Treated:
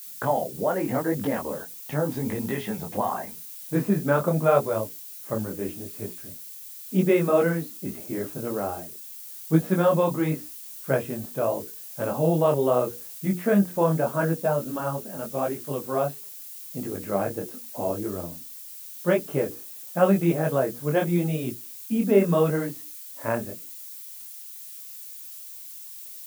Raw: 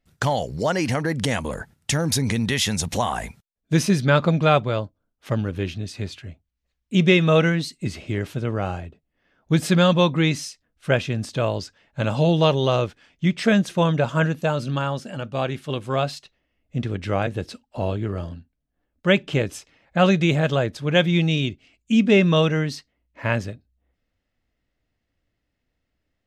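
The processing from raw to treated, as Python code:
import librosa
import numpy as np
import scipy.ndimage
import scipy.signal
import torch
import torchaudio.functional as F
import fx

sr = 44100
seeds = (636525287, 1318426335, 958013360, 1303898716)

y = scipy.signal.sosfilt(scipy.signal.butter(2, 1100.0, 'lowpass', fs=sr, output='sos'), x)
y = fx.dmg_noise_colour(y, sr, seeds[0], colour='violet', level_db=-40.0)
y = scipy.signal.sosfilt(scipy.signal.butter(2, 210.0, 'highpass', fs=sr, output='sos'), y)
y = fx.hum_notches(y, sr, base_hz=60, count=8)
y = fx.detune_double(y, sr, cents=29)
y = y * 10.0 ** (3.5 / 20.0)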